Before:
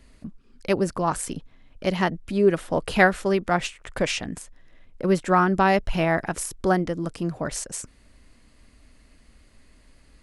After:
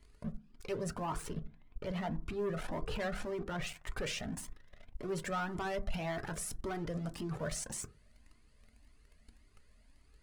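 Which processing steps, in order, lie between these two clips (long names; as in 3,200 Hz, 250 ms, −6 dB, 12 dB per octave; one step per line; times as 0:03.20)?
0:00.98–0:03.67: low-pass filter 1,700 Hz 6 dB per octave
leveller curve on the samples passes 3
brickwall limiter −25.5 dBFS, peak gain reduction 20 dB
convolution reverb RT60 0.35 s, pre-delay 4 ms, DRR 9.5 dB
flanger whose copies keep moving one way rising 1.8 Hz
level −2 dB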